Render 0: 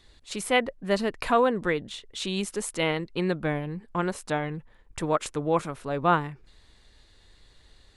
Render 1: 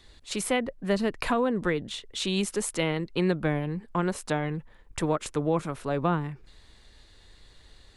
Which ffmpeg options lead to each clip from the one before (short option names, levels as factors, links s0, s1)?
-filter_complex "[0:a]acrossover=split=330[s0][s1];[s1]acompressor=threshold=0.0398:ratio=6[s2];[s0][s2]amix=inputs=2:normalize=0,volume=1.33"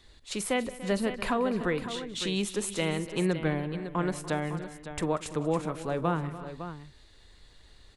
-af "aecho=1:1:44|186|291|341|557:0.112|0.106|0.158|0.1|0.282,volume=0.75"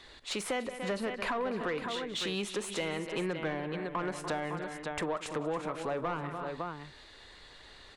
-filter_complex "[0:a]asplit=2[s0][s1];[s1]highpass=f=720:p=1,volume=7.08,asoftclip=type=tanh:threshold=0.211[s2];[s0][s2]amix=inputs=2:normalize=0,lowpass=f=2300:p=1,volume=0.501,acompressor=threshold=0.0178:ratio=2.5"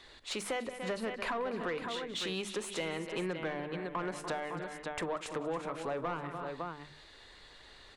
-af "bandreject=f=50:t=h:w=6,bandreject=f=100:t=h:w=6,bandreject=f=150:t=h:w=6,bandreject=f=200:t=h:w=6,bandreject=f=250:t=h:w=6,bandreject=f=300:t=h:w=6,volume=0.794"